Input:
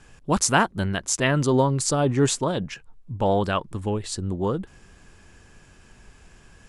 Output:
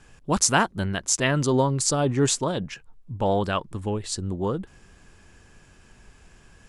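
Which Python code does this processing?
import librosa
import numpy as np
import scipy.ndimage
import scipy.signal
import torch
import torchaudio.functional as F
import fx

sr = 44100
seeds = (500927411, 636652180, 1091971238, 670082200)

y = fx.dynamic_eq(x, sr, hz=5900.0, q=0.83, threshold_db=-37.0, ratio=4.0, max_db=4)
y = F.gain(torch.from_numpy(y), -1.5).numpy()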